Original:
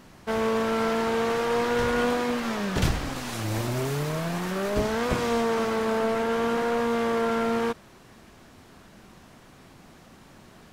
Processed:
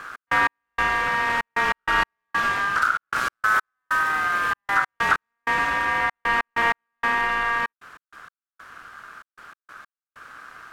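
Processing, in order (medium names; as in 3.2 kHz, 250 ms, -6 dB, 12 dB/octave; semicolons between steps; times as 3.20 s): bass shelf 350 Hz +11.5 dB; compression 2.5:1, threshold -22 dBFS, peak gain reduction 9.5 dB; trance gate "x.x..xxxx." 96 bpm -60 dB; ring modulator 1.4 kHz; gain riding 0.5 s; trim +5 dB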